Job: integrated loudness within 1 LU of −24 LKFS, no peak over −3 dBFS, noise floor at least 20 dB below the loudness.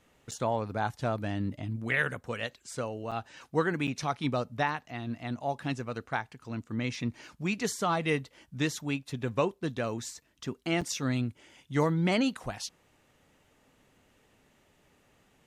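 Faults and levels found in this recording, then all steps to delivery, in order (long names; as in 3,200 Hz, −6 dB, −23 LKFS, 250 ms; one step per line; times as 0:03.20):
number of dropouts 4; longest dropout 6.5 ms; integrated loudness −32.5 LKFS; sample peak −13.0 dBFS; target loudness −24.0 LKFS
→ repair the gap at 0:00.31/0:03.11/0:03.87/0:10.81, 6.5 ms
level +8.5 dB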